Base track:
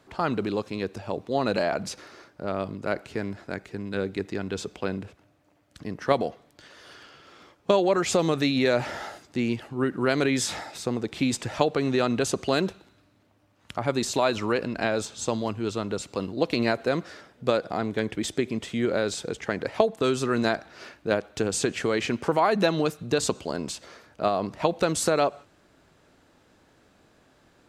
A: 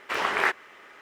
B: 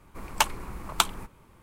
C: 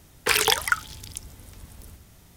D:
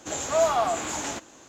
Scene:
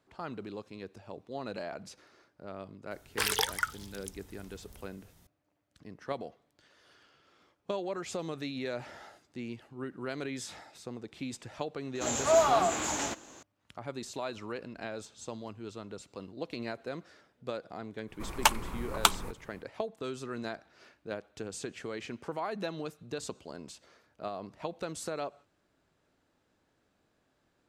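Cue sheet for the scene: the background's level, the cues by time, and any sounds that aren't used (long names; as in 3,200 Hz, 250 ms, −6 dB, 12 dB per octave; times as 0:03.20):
base track −14 dB
0:02.91: mix in C −8.5 dB + parametric band 2,400 Hz −4 dB 0.28 octaves
0:11.95: mix in D −1.5 dB
0:18.05: mix in B −0.5 dB, fades 0.10 s
not used: A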